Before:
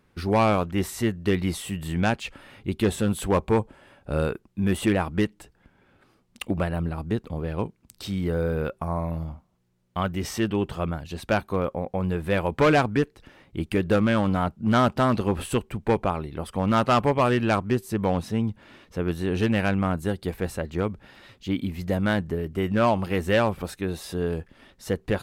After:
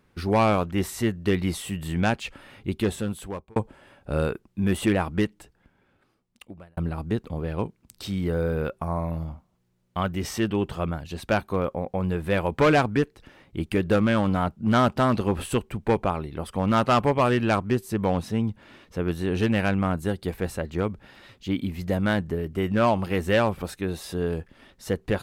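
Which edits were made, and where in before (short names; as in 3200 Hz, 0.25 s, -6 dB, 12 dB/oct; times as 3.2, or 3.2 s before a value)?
2.67–3.56 fade out
5.15–6.77 fade out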